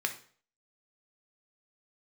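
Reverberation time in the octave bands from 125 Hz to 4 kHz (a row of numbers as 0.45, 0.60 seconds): 0.50, 0.45, 0.50, 0.45, 0.45, 0.45 seconds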